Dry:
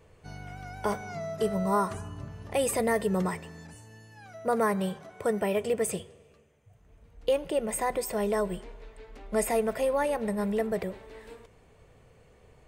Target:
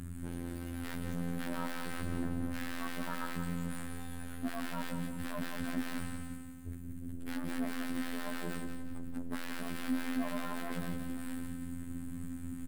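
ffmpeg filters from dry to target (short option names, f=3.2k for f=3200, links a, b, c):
-filter_complex "[0:a]afftfilt=real='re*(1-between(b*sr/4096,310,6000))':imag='im*(1-between(b*sr/4096,310,6000))':win_size=4096:overlap=0.75,acrossover=split=4700[a][b];[a]acontrast=22[c];[c][b]amix=inputs=2:normalize=0,aexciter=amount=10.5:drive=7.5:freq=7.6k,aeval=exprs='0.0211*(abs(mod(val(0)/0.0211+3,4)-2)-1)':c=same,aeval=exprs='(tanh(501*val(0)+0.5)-tanh(0.5))/501':c=same,equalizer=f=250:t=o:w=0.67:g=10,equalizer=f=1.6k:t=o:w=0.67:g=8,equalizer=f=6.3k:t=o:w=0.67:g=-7,afftfilt=real='hypot(re,im)*cos(PI*b)':imag='0':win_size=2048:overlap=0.75,aemphasis=mode=reproduction:type=50kf,aecho=1:1:178|356|534|712|890:0.422|0.177|0.0744|0.0312|0.0131,volume=18dB"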